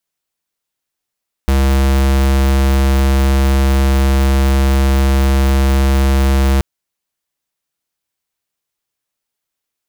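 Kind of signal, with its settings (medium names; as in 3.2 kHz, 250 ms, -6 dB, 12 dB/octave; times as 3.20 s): tone square 67.4 Hz -11.5 dBFS 5.13 s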